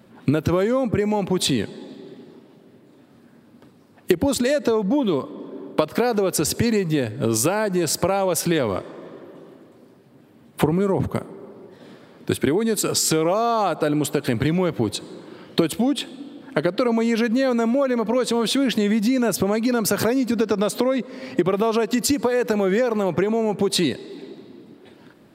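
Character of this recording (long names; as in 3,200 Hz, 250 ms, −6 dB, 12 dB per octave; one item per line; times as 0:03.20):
background noise floor −52 dBFS
spectral slope −4.5 dB per octave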